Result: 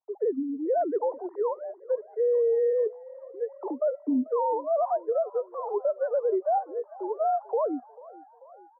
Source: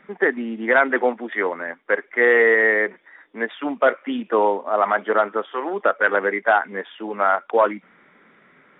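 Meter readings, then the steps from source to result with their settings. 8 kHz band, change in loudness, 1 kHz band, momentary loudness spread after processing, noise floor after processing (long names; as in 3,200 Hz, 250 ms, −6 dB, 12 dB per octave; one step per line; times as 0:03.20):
can't be measured, −8.0 dB, −8.5 dB, 11 LU, −54 dBFS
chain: three sine waves on the formant tracks
noise gate with hold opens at −51 dBFS
Chebyshev band-pass filter 240–1,000 Hz, order 4
brickwall limiter −19.5 dBFS, peak gain reduction 12 dB
echo with shifted repeats 440 ms, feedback 62%, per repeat +34 Hz, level −21 dB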